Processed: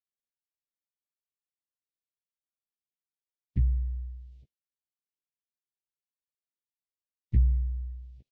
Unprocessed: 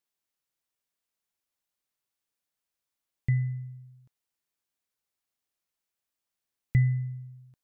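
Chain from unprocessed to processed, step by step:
in parallel at −1.5 dB: downward compressor 10 to 1, threshold −35 dBFS, peak gain reduction 16.5 dB
on the sum: dynamic equaliser 150 Hz, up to −3 dB, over −38 dBFS, Q 6
phase-vocoder pitch shift with formants kept −11 semitones
high-frequency loss of the air 170 metres
wrong playback speed 48 kHz file played as 44.1 kHz
Butterworth band-reject 1,200 Hz, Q 0.57
double-tracking delay 15 ms −6 dB
noise gate with hold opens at −48 dBFS

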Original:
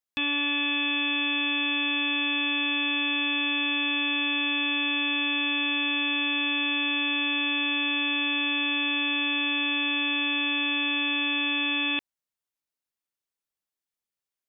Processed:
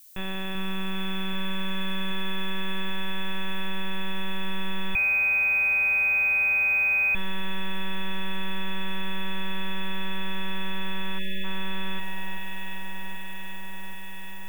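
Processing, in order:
one-pitch LPC vocoder at 8 kHz 190 Hz
high-frequency loss of the air 440 metres
delay that swaps between a low-pass and a high-pass 390 ms, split 1,600 Hz, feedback 87%, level −5.5 dB
0:04.95–0:07.15: voice inversion scrambler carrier 2,500 Hz
background noise violet −51 dBFS
brickwall limiter −18 dBFS, peak gain reduction 4.5 dB
0:11.19–0:11.44: time-frequency box erased 680–1,700 Hz

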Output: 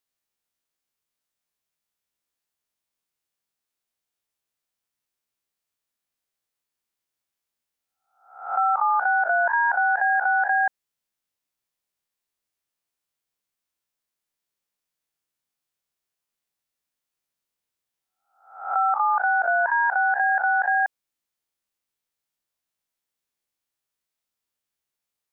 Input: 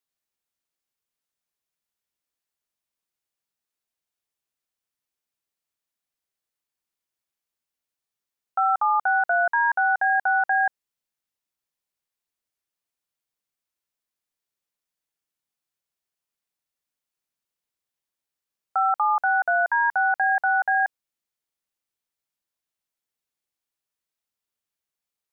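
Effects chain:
peak hold with a rise ahead of every peak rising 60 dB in 0.55 s

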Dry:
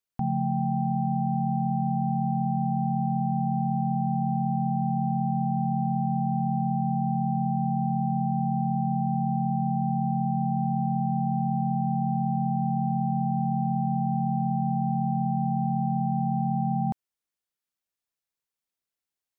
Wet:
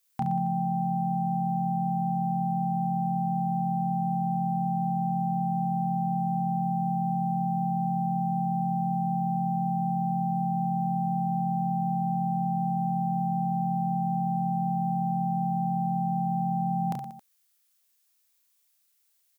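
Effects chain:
spectral tilt +3.5 dB per octave
on a send: reverse bouncing-ball delay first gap 30 ms, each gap 1.3×, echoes 5
on the sum: level +5.5 dB

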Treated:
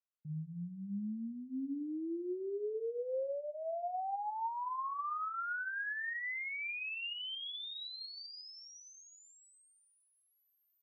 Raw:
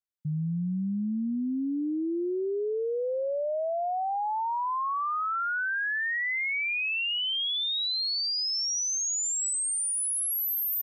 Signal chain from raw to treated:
bass and treble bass −13 dB, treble −14 dB
notch filter 610 Hz, Q 12
downward compressor, threshold −32 dBFS, peak gain reduction 4 dB
high-frequency loss of the air 170 metres
on a send: convolution reverb RT60 0.40 s, pre-delay 3 ms, DRR 9.5 dB
on the sum: level −4.5 dB

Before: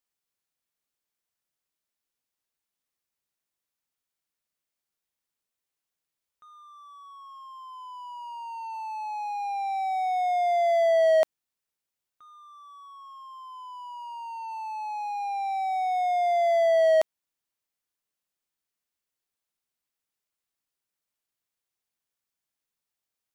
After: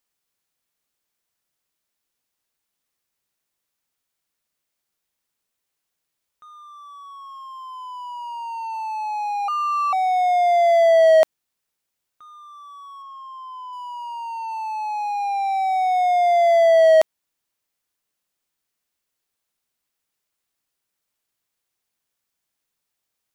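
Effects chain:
0:09.48–0:09.93: frequency shifter +400 Hz
0:13.02–0:13.73: high-shelf EQ 4,500 Hz −9.5 dB
level +7 dB

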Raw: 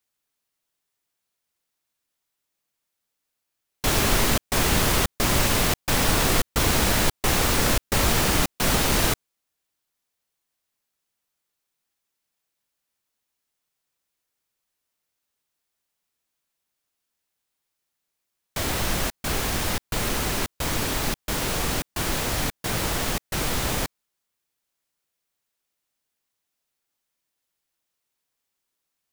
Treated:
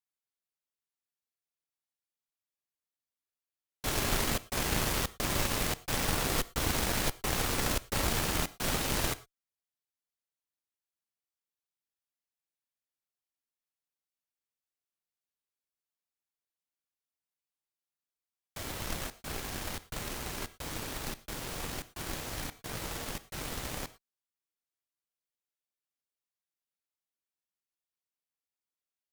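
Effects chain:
reverb whose tail is shaped and stops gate 130 ms flat, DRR 10.5 dB
harmonic generator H 5 −22 dB, 7 −17 dB, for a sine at −6 dBFS
level −9 dB

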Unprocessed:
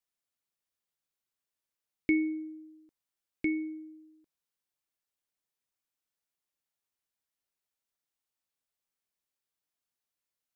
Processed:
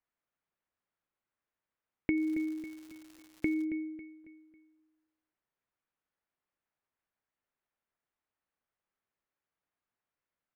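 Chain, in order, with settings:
repeating echo 274 ms, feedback 40%, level −13 dB
downward compressor 4 to 1, threshold −32 dBFS, peak gain reduction 8.5 dB
Chebyshev low-pass filter 1,700 Hz, order 2
0:02.16–0:03.63: surface crackle 260 per second −49 dBFS
level +5 dB

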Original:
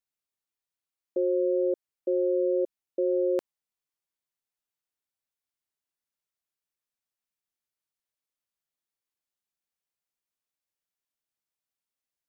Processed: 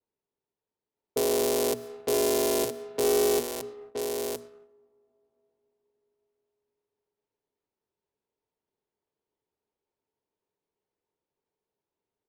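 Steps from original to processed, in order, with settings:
sub-harmonics by changed cycles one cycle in 3, inverted
parametric band 1,300 Hz −13.5 dB 2.5 octaves
upward compression, threshold −43 dBFS
spectral tilt +2.5 dB per octave
on a send: single-tap delay 967 ms −7 dB
on the sum: comb and all-pass reverb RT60 4.3 s, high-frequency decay 0.35×, pre-delay 75 ms, DRR 17 dB
downward expander −49 dBFS
mains-hum notches 60/120/180/240 Hz
hollow resonant body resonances 420/910 Hz, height 11 dB, ringing for 45 ms
low-pass that shuts in the quiet parts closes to 860 Hz, open at −31.5 dBFS
leveller curve on the samples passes 1

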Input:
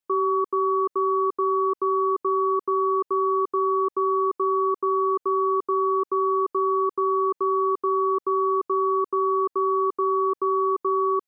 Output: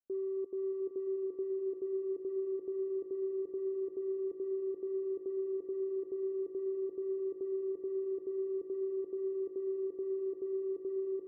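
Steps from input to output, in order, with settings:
Butterworth low-pass 740 Hz 72 dB per octave
noise gate −24 dBFS, range −12 dB
brickwall limiter −40 dBFS, peak gain reduction 7.5 dB
echo that builds up and dies away 90 ms, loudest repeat 8, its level −13 dB
level +7.5 dB

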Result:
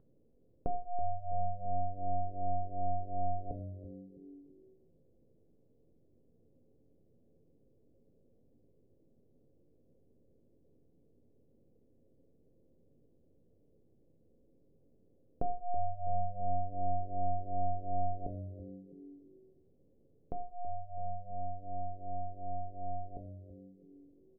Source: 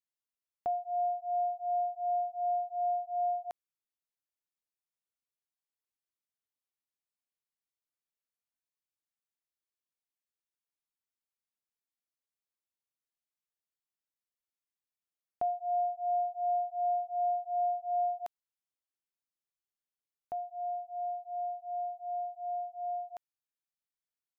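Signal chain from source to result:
gain on one half-wave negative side −7 dB
elliptic low-pass filter 500 Hz, stop band 80 dB
upward compression, threshold −59 dBFS
echo with shifted repeats 327 ms, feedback 46%, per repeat −95 Hz, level −14 dB
coupled-rooms reverb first 0.49 s, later 2.5 s, from −28 dB, DRR 6 dB
level +14 dB

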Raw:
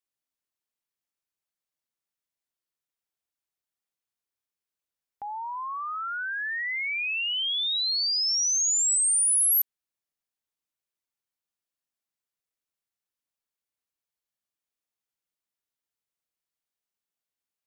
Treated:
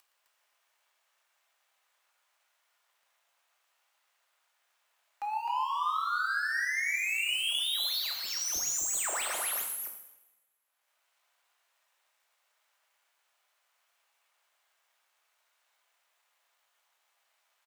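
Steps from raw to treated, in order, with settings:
running median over 9 samples
noise gate with hold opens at −32 dBFS
high-pass filter 630 Hz 24 dB per octave
upward compression, threshold −37 dBFS
leveller curve on the samples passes 3
brickwall limiter −33 dBFS, peak gain reduction 12 dB
loudspeakers that aren't time-aligned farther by 40 metres −11 dB, 89 metres −4 dB
coupled-rooms reverb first 0.86 s, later 2.2 s, from −26 dB, DRR 2 dB

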